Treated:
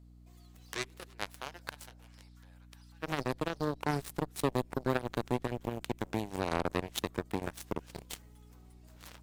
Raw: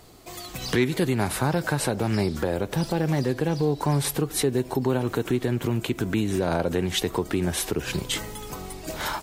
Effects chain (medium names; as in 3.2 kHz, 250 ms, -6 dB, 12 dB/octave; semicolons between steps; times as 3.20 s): 0.63–3.01 s: high-pass 320 Hz -> 1.2 kHz 24 dB/octave; Chebyshev shaper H 3 -9 dB, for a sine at -12 dBFS; hum 60 Hz, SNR 18 dB; trim -2.5 dB